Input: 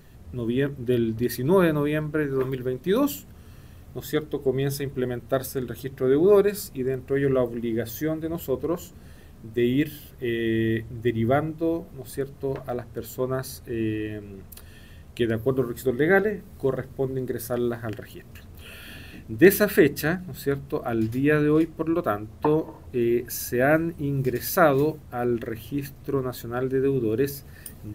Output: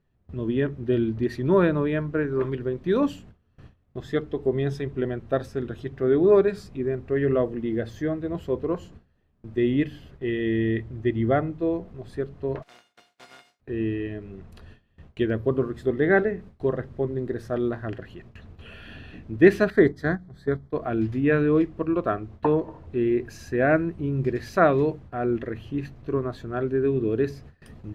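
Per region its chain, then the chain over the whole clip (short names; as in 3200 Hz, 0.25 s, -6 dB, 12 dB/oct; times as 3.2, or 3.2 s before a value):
12.62–13.59 spectral contrast lowered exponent 0.13 + HPF 170 Hz + resonator 710 Hz, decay 0.37 s, mix 90%
19.7–20.73 gate -29 dBFS, range -8 dB + Butterworth band-stop 2700 Hz, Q 2.5 + low shelf 76 Hz +3.5 dB
whole clip: gate with hold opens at -35 dBFS; Bessel low-pass 2700 Hz, order 2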